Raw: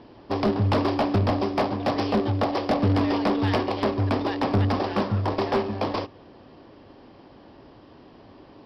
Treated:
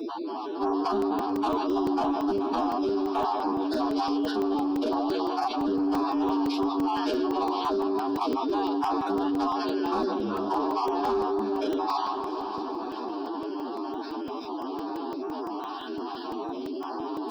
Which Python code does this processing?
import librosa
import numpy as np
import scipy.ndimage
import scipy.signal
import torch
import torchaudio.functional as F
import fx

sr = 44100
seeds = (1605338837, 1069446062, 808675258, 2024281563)

y = fx.spec_dropout(x, sr, seeds[0], share_pct=23)
y = scipy.signal.sosfilt(scipy.signal.butter(4, 280.0, 'highpass', fs=sr, output='sos'), y)
y = fx.high_shelf(y, sr, hz=2800.0, db=-6.0)
y = fx.echo_tape(y, sr, ms=78, feedback_pct=30, wet_db=-11.5, lp_hz=2000.0, drive_db=7.0, wow_cents=14)
y = fx.stretch_vocoder(y, sr, factor=2.0)
y = 10.0 ** (-20.5 / 20.0) * np.tanh(y / 10.0 ** (-20.5 / 20.0))
y = fx.fixed_phaser(y, sr, hz=540.0, stages=6)
y = fx.echo_heads(y, sr, ms=216, heads='second and third', feedback_pct=41, wet_db=-22.5)
y = fx.buffer_crackle(y, sr, first_s=0.85, period_s=0.17, block=128, kind='zero')
y = fx.env_flatten(y, sr, amount_pct=70)
y = y * 10.0 ** (1.5 / 20.0)